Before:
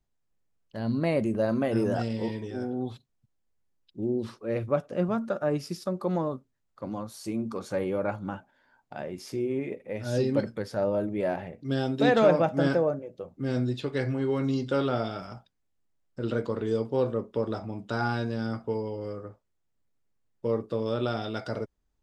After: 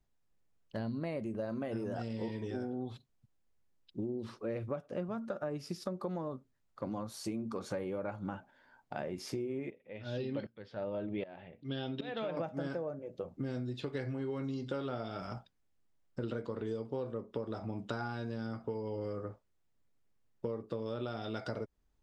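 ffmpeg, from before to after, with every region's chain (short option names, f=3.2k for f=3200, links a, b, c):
-filter_complex "[0:a]asettb=1/sr,asplit=3[a][b][c];[a]atrim=end=9.704[d];[b]atrim=start=9.7:end=12.37,asetpts=PTS-STARTPTS,afade=t=in:d=0.004:c=qsin,afade=t=out:st=2.666:d=0.004:c=qsin,lowpass=f=3.3k:t=q:w=3.1,aeval=exprs='val(0)*pow(10,-20*if(lt(mod(-1.3*n/s,1),2*abs(-1.3)/1000),1-mod(-1.3*n/s,1)/(2*abs(-1.3)/1000),(mod(-1.3*n/s,1)-2*abs(-1.3)/1000)/(1-2*abs(-1.3)/1000))/20)':c=same[e];[c]atrim=start=12.366[f];[d][e]acrossfade=d=0.004:c1=hsin:c2=qsin[g];[g][f]acrossfade=d=0.004:c1=qsin:c2=hsin,highshelf=f=8.2k:g=-6.5,acompressor=threshold=-35dB:ratio=12,volume=1dB"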